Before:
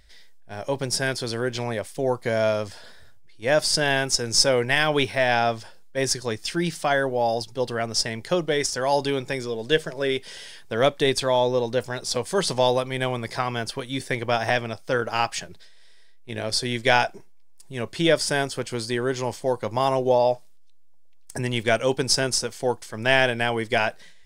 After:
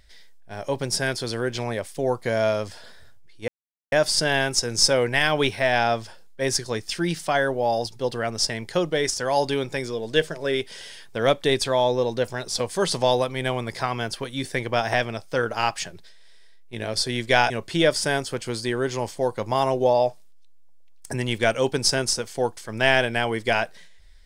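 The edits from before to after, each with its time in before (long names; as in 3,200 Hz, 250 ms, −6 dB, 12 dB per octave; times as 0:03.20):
0:03.48: splice in silence 0.44 s
0:17.06–0:17.75: remove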